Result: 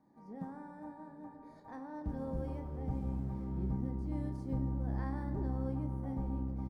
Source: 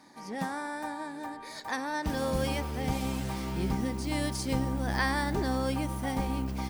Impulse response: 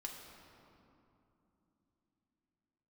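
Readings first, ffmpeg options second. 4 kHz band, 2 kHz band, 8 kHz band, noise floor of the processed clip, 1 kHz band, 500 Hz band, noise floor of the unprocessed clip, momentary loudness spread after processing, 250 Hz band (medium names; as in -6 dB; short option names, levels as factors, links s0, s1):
under -30 dB, -23.5 dB, under -30 dB, -56 dBFS, -14.5 dB, -11.0 dB, -44 dBFS, 13 LU, -6.5 dB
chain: -filter_complex "[0:a]firequalizer=gain_entry='entry(120,0);entry(260,-5);entry(2700,-29)':delay=0.05:min_phase=1,asplit=2[s0][s1];[1:a]atrim=start_sample=2205,adelay=30[s2];[s1][s2]afir=irnorm=-1:irlink=0,volume=0.708[s3];[s0][s3]amix=inputs=2:normalize=0,volume=0.562"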